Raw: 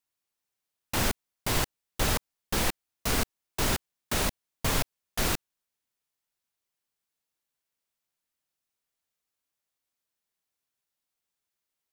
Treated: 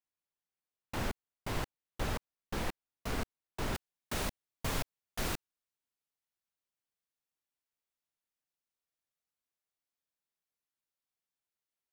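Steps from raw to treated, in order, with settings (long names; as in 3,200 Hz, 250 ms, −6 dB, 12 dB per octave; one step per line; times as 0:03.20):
high-shelf EQ 3,600 Hz −11.5 dB, from 0:03.75 −3.5 dB
level −7 dB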